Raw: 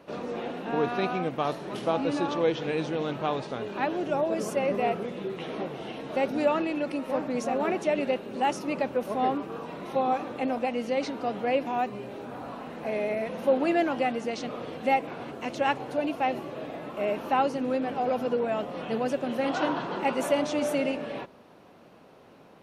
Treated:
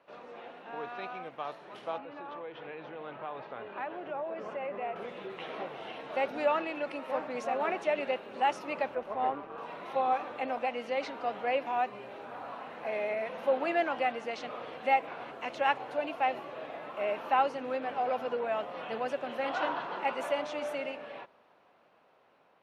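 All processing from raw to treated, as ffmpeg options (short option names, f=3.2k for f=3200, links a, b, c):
-filter_complex "[0:a]asettb=1/sr,asplit=3[a][b][c];[a]atrim=end=1.984[d];[b]atrim=start=1.98:end=4.96,asetpts=PTS-STARTPTS,afade=t=in:d=0.004:c=qsin,afade=t=out:st=2.976:d=0.004:c=qsin,lowpass=2.5k,acompressor=threshold=-28dB:ratio=4:attack=3.2:release=140:knee=1:detection=peak[e];[c]atrim=start=4.956[f];[d][e]acrossfade=d=0.004:c1=hsin:c2=qsin[g];[g][f]acrossfade=d=0.004:c1=qsin:c2=hsin,asettb=1/sr,asplit=3[h][i][j];[h]atrim=end=8.954[k];[i]atrim=start=8.95:end=9.58,asetpts=PTS-STARTPTS,afade=t=in:d=0.004:c=qsin,afade=t=out:st=0.626:d=0.004:c=qsin,aemphasis=mode=reproduction:type=75fm,tremolo=f=150:d=0.519[l];[j]atrim=start=9.576[m];[k][l]acrossfade=d=0.004:c1=hsin:c2=qsin[n];[n][m]acrossfade=d=0.004:c1=qsin:c2=hsin,acrossover=split=540 3600:gain=0.2 1 0.251[o][p][q];[o][p][q]amix=inputs=3:normalize=0,dynaudnorm=f=750:g=9:m=8dB,volume=-8dB"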